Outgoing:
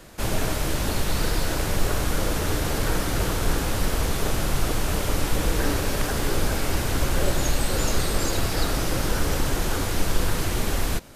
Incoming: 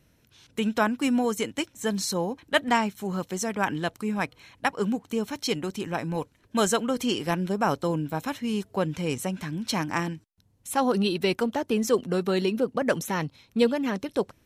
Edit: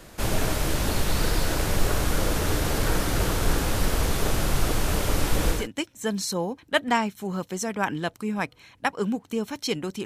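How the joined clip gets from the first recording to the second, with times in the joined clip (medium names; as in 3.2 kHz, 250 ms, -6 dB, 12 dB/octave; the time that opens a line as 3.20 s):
outgoing
5.59 s: go over to incoming from 1.39 s, crossfade 0.18 s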